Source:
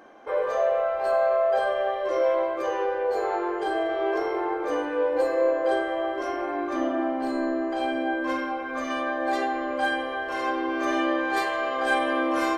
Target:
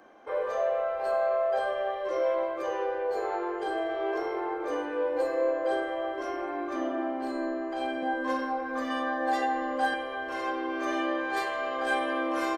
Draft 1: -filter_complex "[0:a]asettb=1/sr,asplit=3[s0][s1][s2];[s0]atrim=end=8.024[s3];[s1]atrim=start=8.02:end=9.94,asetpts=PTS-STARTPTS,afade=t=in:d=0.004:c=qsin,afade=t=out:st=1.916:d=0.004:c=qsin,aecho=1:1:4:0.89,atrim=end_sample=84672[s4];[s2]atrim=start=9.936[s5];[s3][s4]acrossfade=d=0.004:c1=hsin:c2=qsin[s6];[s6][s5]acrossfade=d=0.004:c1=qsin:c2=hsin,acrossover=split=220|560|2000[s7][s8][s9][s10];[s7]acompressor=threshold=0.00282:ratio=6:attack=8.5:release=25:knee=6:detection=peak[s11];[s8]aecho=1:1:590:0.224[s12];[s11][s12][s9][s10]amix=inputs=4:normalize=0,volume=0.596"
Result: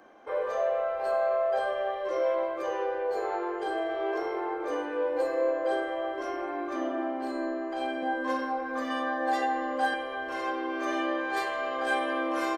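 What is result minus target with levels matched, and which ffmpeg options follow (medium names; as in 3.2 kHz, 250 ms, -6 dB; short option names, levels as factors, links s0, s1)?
compression: peak gain reduction +5.5 dB
-filter_complex "[0:a]asettb=1/sr,asplit=3[s0][s1][s2];[s0]atrim=end=8.024[s3];[s1]atrim=start=8.02:end=9.94,asetpts=PTS-STARTPTS,afade=t=in:d=0.004:c=qsin,afade=t=out:st=1.916:d=0.004:c=qsin,aecho=1:1:4:0.89,atrim=end_sample=84672[s4];[s2]atrim=start=9.936[s5];[s3][s4]acrossfade=d=0.004:c1=hsin:c2=qsin[s6];[s6][s5]acrossfade=d=0.004:c1=qsin:c2=hsin,acrossover=split=220|560|2000[s7][s8][s9][s10];[s7]acompressor=threshold=0.00596:ratio=6:attack=8.5:release=25:knee=6:detection=peak[s11];[s8]aecho=1:1:590:0.224[s12];[s11][s12][s9][s10]amix=inputs=4:normalize=0,volume=0.596"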